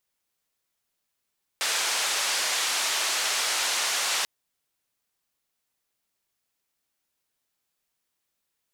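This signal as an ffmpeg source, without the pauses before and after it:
-f lavfi -i "anoisesrc=c=white:d=2.64:r=44100:seed=1,highpass=f=660,lowpass=f=7000,volume=-16.5dB"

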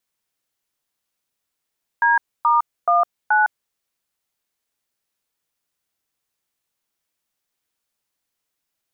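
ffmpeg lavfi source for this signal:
-f lavfi -i "aevalsrc='0.168*clip(min(mod(t,0.428),0.158-mod(t,0.428))/0.002,0,1)*(eq(floor(t/0.428),0)*(sin(2*PI*941*mod(t,0.428))+sin(2*PI*1633*mod(t,0.428)))+eq(floor(t/0.428),1)*(sin(2*PI*941*mod(t,0.428))+sin(2*PI*1209*mod(t,0.428)))+eq(floor(t/0.428),2)*(sin(2*PI*697*mod(t,0.428))+sin(2*PI*1209*mod(t,0.428)))+eq(floor(t/0.428),3)*(sin(2*PI*852*mod(t,0.428))+sin(2*PI*1477*mod(t,0.428))))':d=1.712:s=44100"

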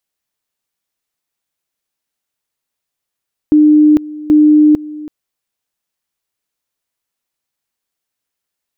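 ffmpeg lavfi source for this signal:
-f lavfi -i "aevalsrc='pow(10,(-4-19.5*gte(mod(t,0.78),0.45))/20)*sin(2*PI*302*t)':d=1.56:s=44100"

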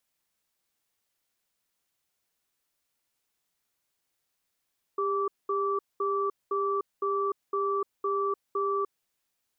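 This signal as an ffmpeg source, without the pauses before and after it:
-f lavfi -i "aevalsrc='0.0398*(sin(2*PI*399*t)+sin(2*PI*1160*t))*clip(min(mod(t,0.51),0.3-mod(t,0.51))/0.005,0,1)':d=3.92:s=44100"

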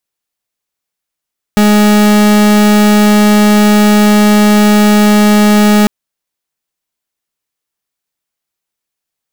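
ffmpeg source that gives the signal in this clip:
-f lavfi -i "aevalsrc='0.473*(2*lt(mod(209*t,1),0.41)-1)':d=4.3:s=44100"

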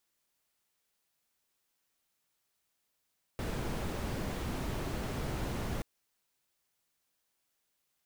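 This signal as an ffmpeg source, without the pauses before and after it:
-f lavfi -i "anoisesrc=c=brown:a=0.0785:d=2.43:r=44100:seed=1"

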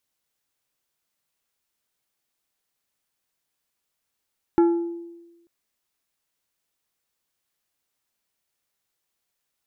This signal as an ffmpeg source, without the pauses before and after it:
-f lavfi -i "aevalsrc='0.251*pow(10,-3*t/1.14)*sin(2*PI*340*t)+0.0794*pow(10,-3*t/0.6)*sin(2*PI*850*t)+0.0251*pow(10,-3*t/0.432)*sin(2*PI*1360*t)+0.00794*pow(10,-3*t/0.37)*sin(2*PI*1700*t)+0.00251*pow(10,-3*t/0.308)*sin(2*PI*2210*t)':d=0.89:s=44100"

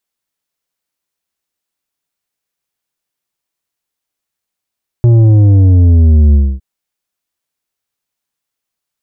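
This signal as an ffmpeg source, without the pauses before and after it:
-f lavfi -i "aevalsrc='0.596*clip((1.56-t)/0.26,0,1)*tanh(2.51*sin(2*PI*120*1.56/log(65/120)*(exp(log(65/120)*t/1.56)-1)))/tanh(2.51)':d=1.56:s=44100"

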